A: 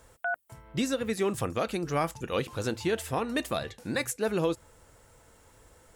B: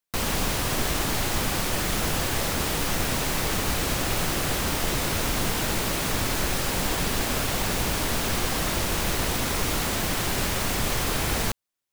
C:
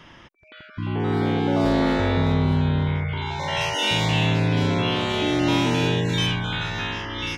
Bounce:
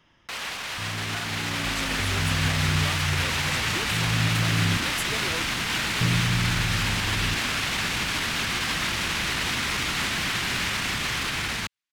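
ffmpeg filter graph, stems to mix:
ffmpeg -i stem1.wav -i stem2.wav -i stem3.wav -filter_complex "[0:a]highpass=500,adelay=900,volume=-4dB[link_01];[1:a]alimiter=limit=-17.5dB:level=0:latency=1:release=19,bandpass=frequency=2300:width_type=q:width=0.86:csg=0,adelay=150,volume=1.5dB[link_02];[2:a]volume=-15.5dB,asplit=3[link_03][link_04][link_05];[link_03]atrim=end=4.77,asetpts=PTS-STARTPTS,afade=type=out:start_time=4.766:duration=0.004:curve=hsin[link_06];[link_04]atrim=start=4.77:end=6.01,asetpts=PTS-STARTPTS,volume=0[link_07];[link_05]atrim=start=6.01,asetpts=PTS-STARTPTS,afade=type=in:duration=0.004:curve=hsin[link_08];[link_06][link_07][link_08]concat=n=3:v=0:a=1[link_09];[link_01][link_09]amix=inputs=2:normalize=0,highshelf=frequency=4300:gain=5.5,acompressor=threshold=-37dB:ratio=6,volume=0dB[link_10];[link_02][link_10]amix=inputs=2:normalize=0,asubboost=boost=8:cutoff=190,dynaudnorm=framelen=630:gausssize=5:maxgain=6dB" out.wav

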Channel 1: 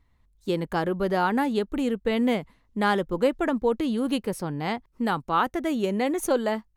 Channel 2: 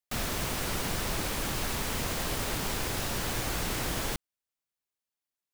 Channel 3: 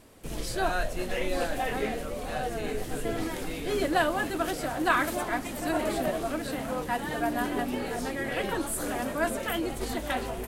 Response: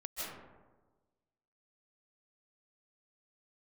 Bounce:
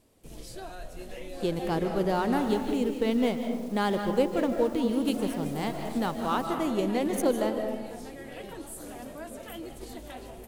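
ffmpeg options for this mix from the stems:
-filter_complex "[0:a]aeval=exprs='sgn(val(0))*max(abs(val(0))-0.00794,0)':channel_layout=same,adelay=950,volume=-4dB,asplit=2[link_01][link_02];[link_02]volume=-3dB[link_03];[1:a]alimiter=level_in=5.5dB:limit=-24dB:level=0:latency=1,volume=-5.5dB,adelay=2300,volume=-13.5dB[link_04];[2:a]alimiter=limit=-19.5dB:level=0:latency=1:release=137,volume=-10dB,asplit=3[link_05][link_06][link_07];[link_05]atrim=end=2.74,asetpts=PTS-STARTPTS,afade=type=out:start_time=2.736:duration=0.004:curve=hsin[link_08];[link_06]atrim=start=2.74:end=5.05,asetpts=PTS-STARTPTS,volume=0[link_09];[link_07]atrim=start=5.05,asetpts=PTS-STARTPTS,afade=type=in:duration=0.004:curve=hsin[link_10];[link_08][link_09][link_10]concat=n=3:v=0:a=1,asplit=2[link_11][link_12];[link_12]volume=-12dB[link_13];[3:a]atrim=start_sample=2205[link_14];[link_03][link_13]amix=inputs=2:normalize=0[link_15];[link_15][link_14]afir=irnorm=-1:irlink=0[link_16];[link_01][link_04][link_11][link_16]amix=inputs=4:normalize=0,equalizer=frequency=1500:width_type=o:width=1.4:gain=-6.5"

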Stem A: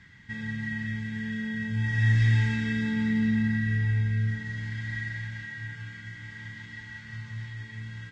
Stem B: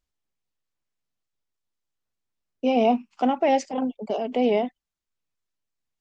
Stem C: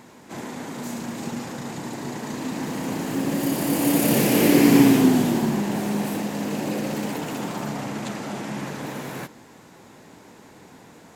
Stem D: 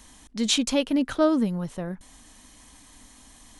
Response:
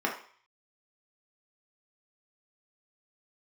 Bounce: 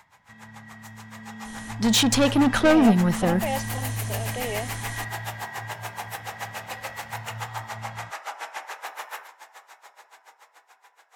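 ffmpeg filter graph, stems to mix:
-filter_complex "[0:a]alimiter=limit=-24dB:level=0:latency=1,volume=-14dB[link_01];[1:a]highpass=frequency=1300:poles=1,volume=-13.5dB[link_02];[2:a]highpass=frequency=720:width=0.5412,highpass=frequency=720:width=1.3066,acompressor=threshold=-40dB:ratio=6,aeval=exprs='val(0)*pow(10,-31*(0.5-0.5*cos(2*PI*7*n/s))/20)':channel_layout=same,volume=-4.5dB,asplit=2[link_03][link_04];[link_04]volume=-9dB[link_05];[3:a]asoftclip=type=tanh:threshold=-25.5dB,adelay=1450,volume=-1dB,asplit=2[link_06][link_07];[link_07]volume=-22.5dB[link_08];[4:a]atrim=start_sample=2205[link_09];[link_05][link_08]amix=inputs=2:normalize=0[link_10];[link_10][link_09]afir=irnorm=-1:irlink=0[link_11];[link_01][link_02][link_03][link_06][link_11]amix=inputs=5:normalize=0,dynaudnorm=framelen=270:gausssize=13:maxgain=12.5dB"

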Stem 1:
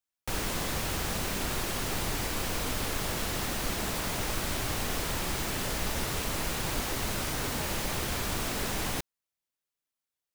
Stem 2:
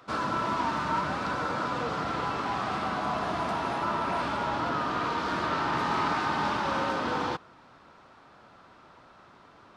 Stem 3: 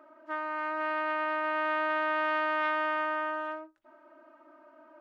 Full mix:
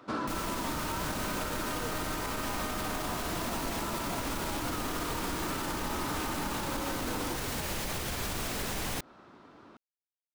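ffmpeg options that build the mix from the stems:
ffmpeg -i stem1.wav -i stem2.wav -i stem3.wav -filter_complex "[0:a]acrusher=bits=8:mix=0:aa=0.5,volume=2.5dB[link_01];[1:a]equalizer=frequency=290:width_type=o:width=1.3:gain=9,acontrast=51,volume=-9dB[link_02];[2:a]volume=-6dB[link_03];[link_01][link_02][link_03]amix=inputs=3:normalize=0,alimiter=level_in=0.5dB:limit=-24dB:level=0:latency=1:release=104,volume=-0.5dB" out.wav

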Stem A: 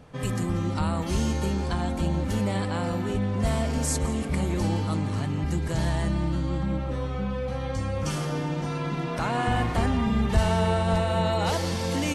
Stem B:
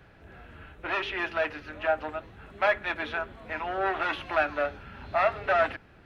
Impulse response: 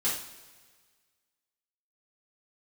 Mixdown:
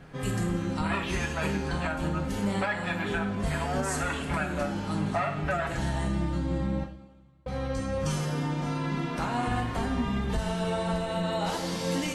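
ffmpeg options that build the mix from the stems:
-filter_complex "[0:a]volume=-6dB,asplit=3[link_01][link_02][link_03];[link_01]atrim=end=6.84,asetpts=PTS-STARTPTS,afade=type=out:start_time=6.836:duration=0.004:curve=hsin[link_04];[link_02]atrim=start=6.84:end=7.46,asetpts=PTS-STARTPTS,volume=0[link_05];[link_03]atrim=start=7.46,asetpts=PTS-STARTPTS,afade=type=in:duration=0.004:curve=hsin[link_06];[link_04][link_05][link_06]concat=n=3:v=0:a=1,asplit=2[link_07][link_08];[link_08]volume=-6dB[link_09];[1:a]aecho=1:1:7.1:0.66,volume=-3dB,asplit=2[link_10][link_11];[link_11]volume=-9dB[link_12];[2:a]atrim=start_sample=2205[link_13];[link_09][link_12]amix=inputs=2:normalize=0[link_14];[link_14][link_13]afir=irnorm=-1:irlink=0[link_15];[link_07][link_10][link_15]amix=inputs=3:normalize=0,alimiter=limit=-19dB:level=0:latency=1:release=402"

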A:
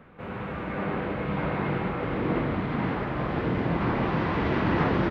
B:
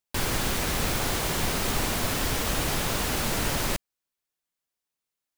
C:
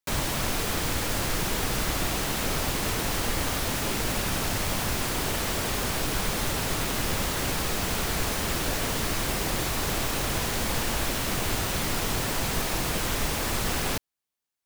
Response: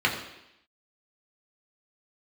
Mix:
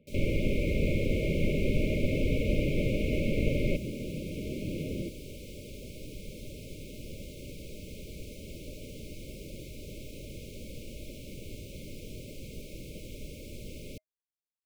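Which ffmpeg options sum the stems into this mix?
-filter_complex "[0:a]highshelf=frequency=2900:gain=12,volume=-10.5dB[link_01];[1:a]lowpass=frequency=1800:width_type=q:width=2.3,bandreject=frequency=60:width_type=h:width=6,bandreject=frequency=120:width_type=h:width=6,bandreject=frequency=180:width_type=h:width=6,bandreject=frequency=240:width_type=h:width=6,bandreject=frequency=300:width_type=h:width=6,bandreject=frequency=360:width_type=h:width=6,bandreject=frequency=420:width_type=h:width=6,bandreject=frequency=480:width_type=h:width=6,volume=2.5dB[link_02];[2:a]volume=-12.5dB[link_03];[link_01][link_02][link_03]amix=inputs=3:normalize=0,afftfilt=real='re*(1-between(b*sr/4096,630,2100))':imag='im*(1-between(b*sr/4096,630,2100))':win_size=4096:overlap=0.75,highshelf=frequency=2100:gain=-10.5"

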